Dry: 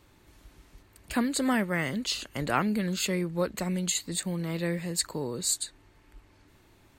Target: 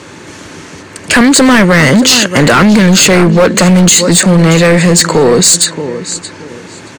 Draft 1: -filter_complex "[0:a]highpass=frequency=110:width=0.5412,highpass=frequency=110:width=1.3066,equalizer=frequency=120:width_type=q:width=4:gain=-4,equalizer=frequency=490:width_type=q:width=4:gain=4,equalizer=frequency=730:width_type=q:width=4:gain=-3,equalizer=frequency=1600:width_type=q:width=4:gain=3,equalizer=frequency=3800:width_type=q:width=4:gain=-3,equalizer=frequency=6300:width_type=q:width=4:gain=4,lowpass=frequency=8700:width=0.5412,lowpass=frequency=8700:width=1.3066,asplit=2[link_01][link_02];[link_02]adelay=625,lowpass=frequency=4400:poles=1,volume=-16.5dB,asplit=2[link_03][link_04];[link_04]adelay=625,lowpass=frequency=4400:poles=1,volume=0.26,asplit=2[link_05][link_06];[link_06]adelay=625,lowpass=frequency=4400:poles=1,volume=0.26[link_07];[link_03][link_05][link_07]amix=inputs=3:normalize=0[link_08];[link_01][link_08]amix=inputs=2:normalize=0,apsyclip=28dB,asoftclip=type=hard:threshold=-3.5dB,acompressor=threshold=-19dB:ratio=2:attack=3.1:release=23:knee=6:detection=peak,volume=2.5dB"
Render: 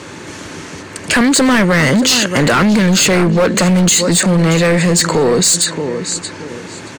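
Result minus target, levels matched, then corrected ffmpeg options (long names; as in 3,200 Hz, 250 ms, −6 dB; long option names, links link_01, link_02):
downward compressor: peak gain reduction +5.5 dB
-filter_complex "[0:a]highpass=frequency=110:width=0.5412,highpass=frequency=110:width=1.3066,equalizer=frequency=120:width_type=q:width=4:gain=-4,equalizer=frequency=490:width_type=q:width=4:gain=4,equalizer=frequency=730:width_type=q:width=4:gain=-3,equalizer=frequency=1600:width_type=q:width=4:gain=3,equalizer=frequency=3800:width_type=q:width=4:gain=-3,equalizer=frequency=6300:width_type=q:width=4:gain=4,lowpass=frequency=8700:width=0.5412,lowpass=frequency=8700:width=1.3066,asplit=2[link_01][link_02];[link_02]adelay=625,lowpass=frequency=4400:poles=1,volume=-16.5dB,asplit=2[link_03][link_04];[link_04]adelay=625,lowpass=frequency=4400:poles=1,volume=0.26,asplit=2[link_05][link_06];[link_06]adelay=625,lowpass=frequency=4400:poles=1,volume=0.26[link_07];[link_03][link_05][link_07]amix=inputs=3:normalize=0[link_08];[link_01][link_08]amix=inputs=2:normalize=0,apsyclip=28dB,asoftclip=type=hard:threshold=-3.5dB,acompressor=threshold=-7.5dB:ratio=2:attack=3.1:release=23:knee=6:detection=peak,volume=2.5dB"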